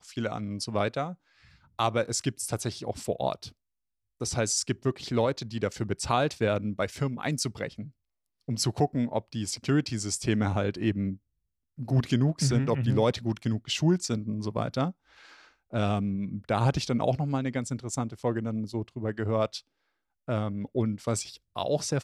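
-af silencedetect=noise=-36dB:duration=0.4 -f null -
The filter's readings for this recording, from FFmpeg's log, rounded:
silence_start: 1.13
silence_end: 1.79 | silence_duration: 0.66
silence_start: 3.48
silence_end: 4.21 | silence_duration: 0.73
silence_start: 7.85
silence_end: 8.48 | silence_duration: 0.64
silence_start: 11.15
silence_end: 11.79 | silence_duration: 0.65
silence_start: 14.91
silence_end: 15.73 | silence_duration: 0.82
silence_start: 19.59
silence_end: 20.28 | silence_duration: 0.69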